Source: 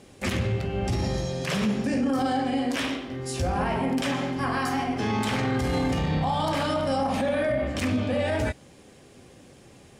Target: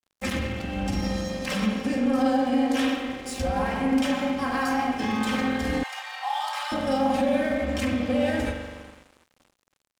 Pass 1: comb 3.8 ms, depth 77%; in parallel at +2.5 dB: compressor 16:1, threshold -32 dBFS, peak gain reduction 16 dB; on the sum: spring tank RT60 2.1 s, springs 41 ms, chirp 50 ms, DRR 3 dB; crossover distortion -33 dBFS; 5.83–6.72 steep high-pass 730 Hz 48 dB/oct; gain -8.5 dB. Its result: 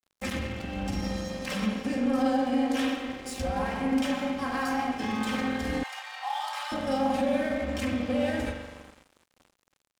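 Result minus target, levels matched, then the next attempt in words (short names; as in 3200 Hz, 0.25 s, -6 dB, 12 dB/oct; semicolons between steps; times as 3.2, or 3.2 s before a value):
compressor: peak gain reduction +9.5 dB
comb 3.8 ms, depth 77%; in parallel at +2.5 dB: compressor 16:1, threshold -22 dBFS, peak gain reduction 6.5 dB; on the sum: spring tank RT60 2.1 s, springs 41 ms, chirp 50 ms, DRR 3 dB; crossover distortion -33 dBFS; 5.83–6.72 steep high-pass 730 Hz 48 dB/oct; gain -8.5 dB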